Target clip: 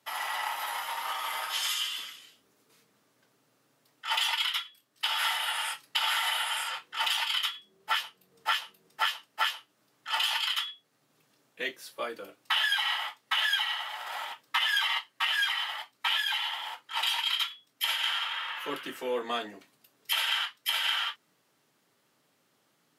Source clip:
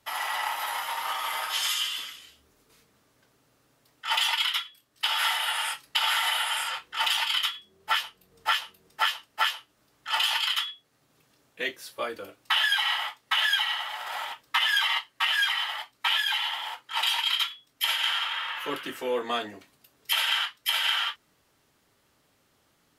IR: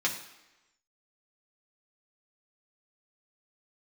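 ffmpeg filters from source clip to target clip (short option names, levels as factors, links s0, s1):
-af "highpass=f=130:w=0.5412,highpass=f=130:w=1.3066,volume=0.708"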